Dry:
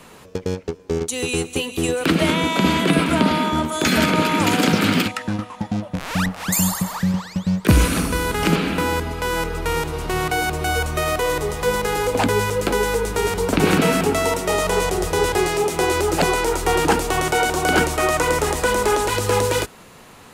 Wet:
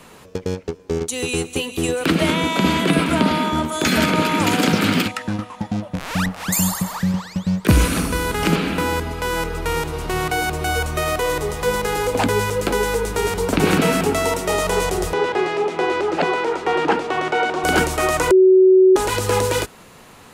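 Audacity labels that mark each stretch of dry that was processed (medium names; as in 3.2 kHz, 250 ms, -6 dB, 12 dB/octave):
15.130000	17.640000	band-pass 220–3100 Hz
18.310000	18.960000	bleep 375 Hz -7.5 dBFS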